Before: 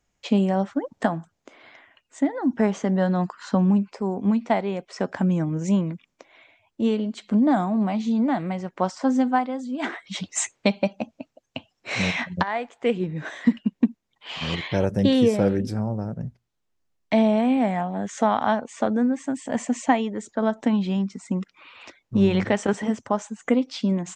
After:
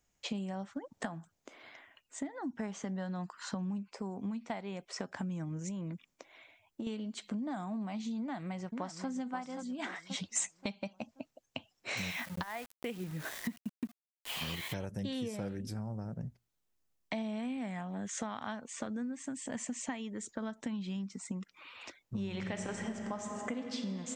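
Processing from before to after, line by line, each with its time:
0:05.59–0:06.87: downward compressor, threshold −27 dBFS
0:08.19–0:09.09: delay throw 530 ms, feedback 35%, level −9.5 dB
0:11.97–0:14.74: centre clipping without the shift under −37.5 dBFS
0:17.22–0:21.03: parametric band 770 Hz −6 dB
0:22.23–0:23.80: thrown reverb, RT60 2.8 s, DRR 4.5 dB
whole clip: dynamic equaliser 440 Hz, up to −6 dB, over −33 dBFS, Q 0.76; downward compressor 4 to 1, threshold −31 dBFS; high-shelf EQ 7,800 Hz +11.5 dB; level −5.5 dB

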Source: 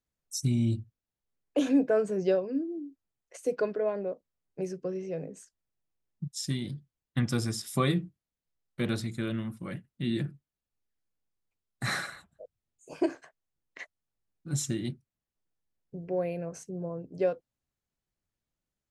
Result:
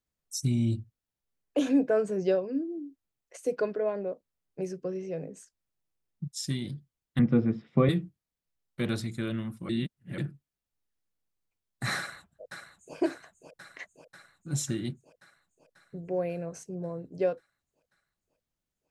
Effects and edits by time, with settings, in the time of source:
0:07.19–0:07.89: loudspeaker in its box 100–2,300 Hz, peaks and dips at 150 Hz +9 dB, 230 Hz +8 dB, 330 Hz +3 dB, 490 Hz +8 dB, 1,100 Hz −3 dB, 1,600 Hz −6 dB
0:09.69–0:10.18: reverse
0:11.97–0:12.96: delay throw 540 ms, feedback 70%, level −7 dB

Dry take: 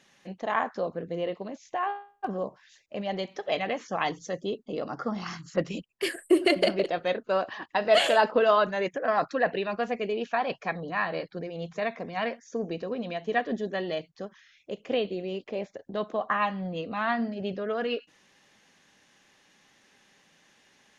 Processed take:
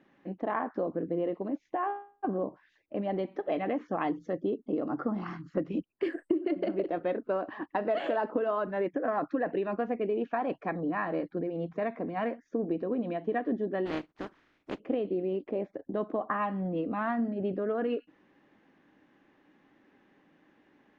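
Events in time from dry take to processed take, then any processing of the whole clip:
0:13.85–0:14.78: compressing power law on the bin magnitudes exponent 0.26
whole clip: low-pass filter 1,600 Hz 12 dB per octave; parametric band 300 Hz +13 dB 0.59 octaves; downward compressor 10 to 1, threshold −24 dBFS; level −1.5 dB

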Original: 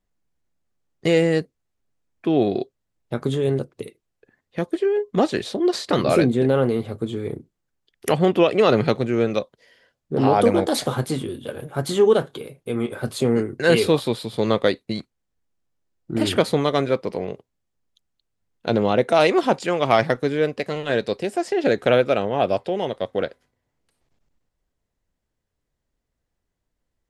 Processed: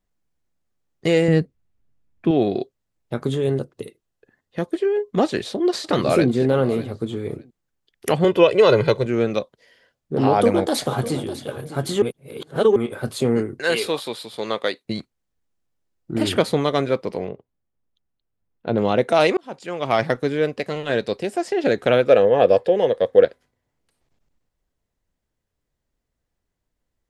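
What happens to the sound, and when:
0:01.28–0:02.31: bass and treble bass +10 dB, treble −6 dB
0:03.48–0:04.62: notch filter 2,300 Hz, Q 9.6
0:05.24–0:06.30: delay throw 600 ms, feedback 15%, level −16 dB
0:08.24–0:09.06: comb filter 2 ms
0:10.30–0:11.43: delay throw 600 ms, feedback 10%, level −13.5 dB
0:12.02–0:12.76: reverse
0:13.59–0:14.85: high-pass filter 750 Hz 6 dB per octave
0:17.28–0:18.78: head-to-tape spacing loss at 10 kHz 29 dB
0:19.37–0:20.14: fade in
0:22.08–0:23.25: hollow resonant body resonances 490/1,700 Hz, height 14 dB, ringing for 40 ms

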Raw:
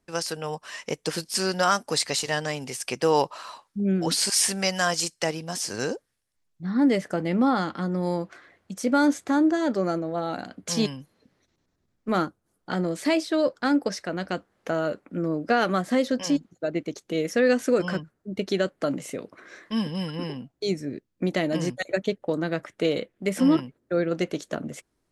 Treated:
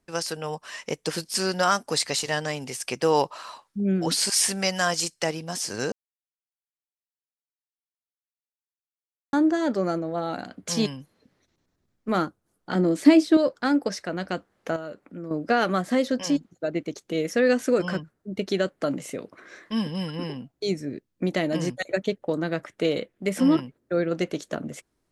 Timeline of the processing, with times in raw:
0:05.92–0:09.33: silence
0:12.75–0:13.37: parametric band 280 Hz +12 dB
0:14.76–0:15.31: downward compressor 1.5 to 1, threshold −48 dBFS

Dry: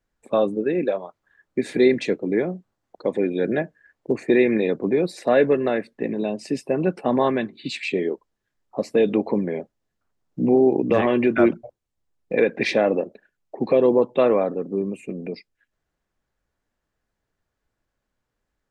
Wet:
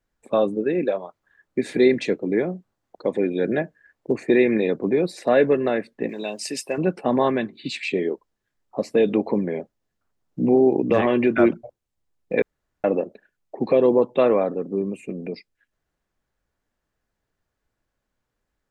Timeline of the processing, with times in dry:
0:06.09–0:06.78: spectral tilt +4 dB per octave
0:12.42–0:12.84: fill with room tone

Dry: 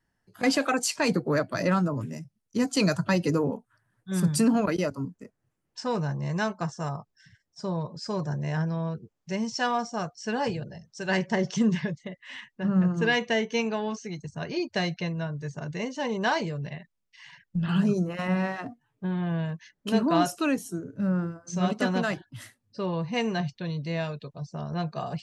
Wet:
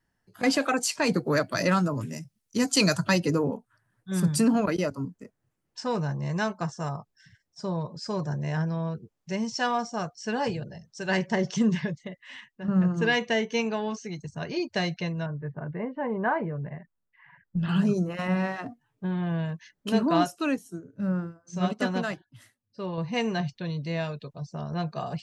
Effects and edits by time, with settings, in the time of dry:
0:01.16–0:03.20: high-shelf EQ 2,200 Hz +8 dB
0:12.02–0:12.68: fade out, to −6.5 dB
0:15.26–0:17.57: inverse Chebyshev low-pass filter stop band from 7,200 Hz, stop band 70 dB
0:20.24–0:22.98: expander for the loud parts, over −42 dBFS

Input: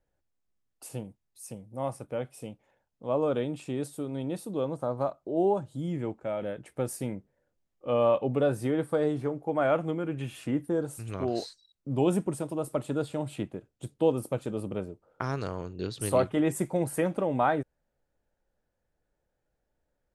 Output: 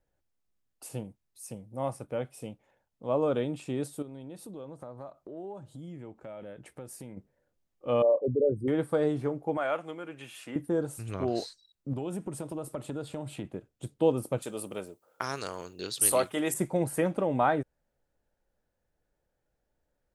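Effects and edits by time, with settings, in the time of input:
0:04.02–0:07.17: downward compressor 3 to 1, threshold −43 dBFS
0:08.02–0:08.68: spectral envelope exaggerated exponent 3
0:09.57–0:10.56: high-pass filter 1,000 Hz 6 dB per octave
0:11.93–0:13.45: downward compressor 4 to 1, threshold −32 dBFS
0:14.42–0:16.54: RIAA equalisation recording

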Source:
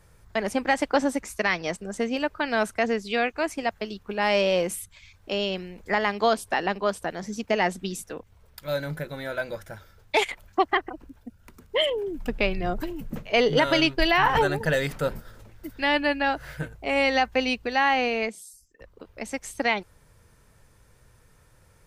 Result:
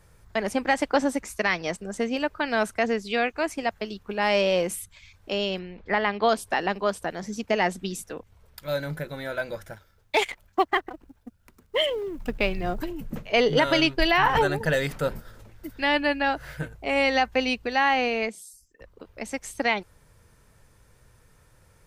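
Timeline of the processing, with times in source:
0:05.59–0:06.29: low-pass filter 4,100 Hz 24 dB per octave
0:09.73–0:12.80: mu-law and A-law mismatch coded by A

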